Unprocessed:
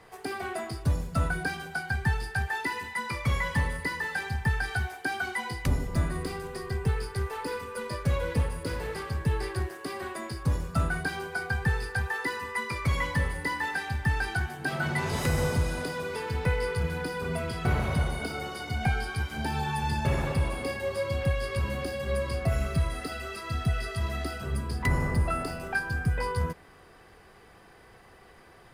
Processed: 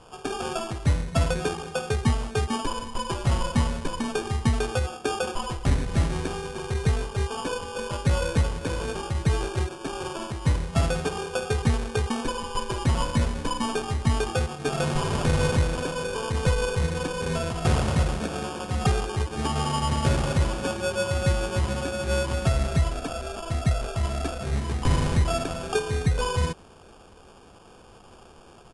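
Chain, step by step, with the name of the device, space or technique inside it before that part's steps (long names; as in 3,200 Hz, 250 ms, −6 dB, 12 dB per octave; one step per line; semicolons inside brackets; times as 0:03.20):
crushed at another speed (tape speed factor 2×; decimation without filtering 11×; tape speed factor 0.5×)
level +4 dB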